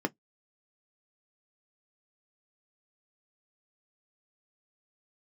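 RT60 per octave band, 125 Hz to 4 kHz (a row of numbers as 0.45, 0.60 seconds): 0.20, 0.15, 0.10, 0.10, 0.10, 0.10 seconds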